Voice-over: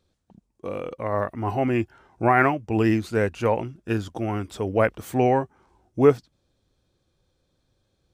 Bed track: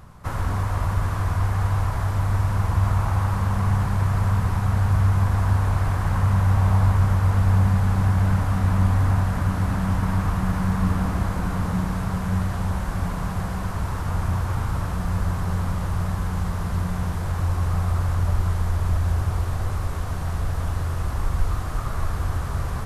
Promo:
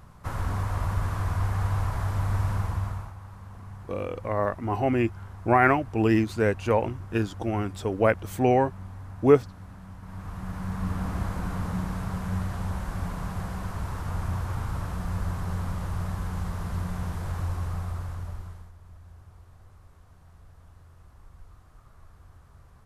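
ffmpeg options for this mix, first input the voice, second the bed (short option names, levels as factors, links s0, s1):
-filter_complex "[0:a]adelay=3250,volume=0.891[s0];[1:a]volume=3.55,afade=t=out:st=2.5:d=0.64:silence=0.141254,afade=t=in:st=10.01:d=1.19:silence=0.16788,afade=t=out:st=17.35:d=1.37:silence=0.0891251[s1];[s0][s1]amix=inputs=2:normalize=0"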